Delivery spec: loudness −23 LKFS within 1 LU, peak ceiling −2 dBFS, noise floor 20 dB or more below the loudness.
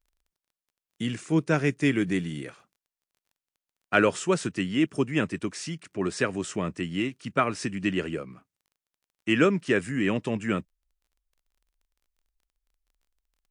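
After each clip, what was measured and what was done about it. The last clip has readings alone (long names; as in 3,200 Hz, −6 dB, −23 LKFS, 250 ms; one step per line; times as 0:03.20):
crackle rate 17 per second; integrated loudness −27.5 LKFS; sample peak −8.0 dBFS; target loudness −23.0 LKFS
→ click removal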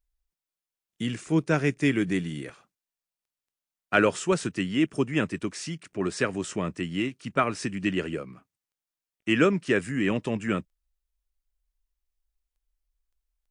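crackle rate 0 per second; integrated loudness −27.5 LKFS; sample peak −8.0 dBFS; target loudness −23.0 LKFS
→ level +4.5 dB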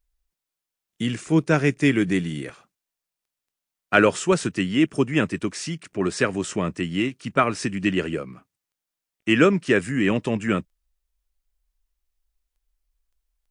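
integrated loudness −23.0 LKFS; sample peak −3.5 dBFS; background noise floor −87 dBFS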